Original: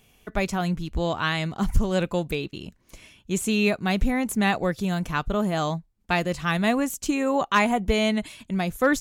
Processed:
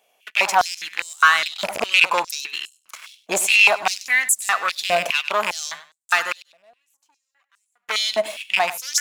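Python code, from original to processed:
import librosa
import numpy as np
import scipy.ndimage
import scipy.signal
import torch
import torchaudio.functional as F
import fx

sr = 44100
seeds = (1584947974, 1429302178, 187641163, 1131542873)

y = fx.rattle_buzz(x, sr, strikes_db=-25.0, level_db=-18.0)
y = fx.leveller(y, sr, passes=3)
y = fx.rider(y, sr, range_db=4, speed_s=2.0)
y = fx.gate_flip(y, sr, shuts_db=-17.0, range_db=-41, at=(6.32, 7.89))
y = fx.echo_feedback(y, sr, ms=99, feedback_pct=23, wet_db=-15.5)
y = fx.filter_held_highpass(y, sr, hz=4.9, low_hz=620.0, high_hz=7900.0)
y = F.gain(torch.from_numpy(y), -2.0).numpy()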